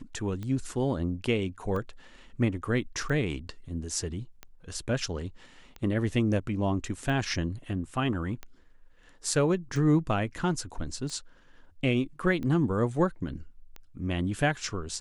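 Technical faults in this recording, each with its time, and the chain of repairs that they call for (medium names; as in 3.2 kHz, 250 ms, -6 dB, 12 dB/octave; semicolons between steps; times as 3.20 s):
tick 45 rpm -25 dBFS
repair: de-click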